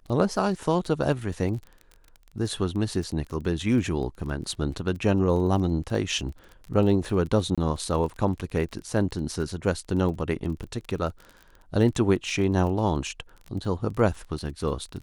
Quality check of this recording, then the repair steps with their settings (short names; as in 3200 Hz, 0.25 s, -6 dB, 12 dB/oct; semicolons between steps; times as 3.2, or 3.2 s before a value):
crackle 28/s -34 dBFS
7.55–7.58 gap 26 ms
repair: de-click; interpolate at 7.55, 26 ms